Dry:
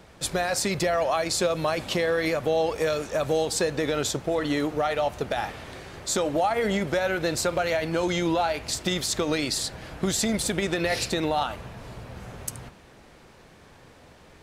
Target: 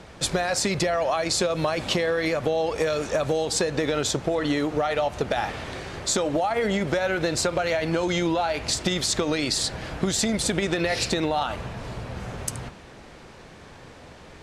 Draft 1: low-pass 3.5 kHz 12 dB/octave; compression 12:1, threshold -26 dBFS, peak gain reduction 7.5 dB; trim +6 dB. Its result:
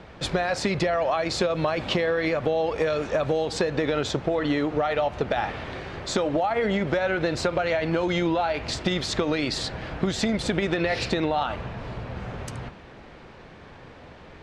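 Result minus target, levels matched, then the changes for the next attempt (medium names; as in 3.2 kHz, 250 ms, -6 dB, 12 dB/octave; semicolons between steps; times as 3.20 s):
8 kHz band -10.0 dB
change: low-pass 8.9 kHz 12 dB/octave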